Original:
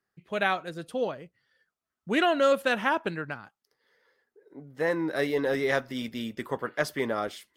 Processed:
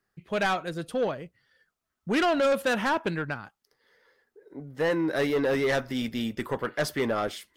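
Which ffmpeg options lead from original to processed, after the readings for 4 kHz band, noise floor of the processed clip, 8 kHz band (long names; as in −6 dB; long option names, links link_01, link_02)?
+1.0 dB, −83 dBFS, +4.0 dB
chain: -af "lowshelf=frequency=66:gain=11,asoftclip=type=tanh:threshold=-23.5dB,volume=4dB"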